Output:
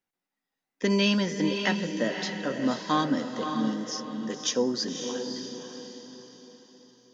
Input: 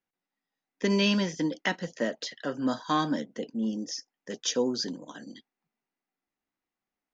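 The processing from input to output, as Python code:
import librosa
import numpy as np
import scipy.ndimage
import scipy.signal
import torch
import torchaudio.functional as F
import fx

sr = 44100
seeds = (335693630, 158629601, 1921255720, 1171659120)

y = fx.echo_diffused(x, sr, ms=557, feedback_pct=41, wet_db=-6.0)
y = F.gain(torch.from_numpy(y), 1.0).numpy()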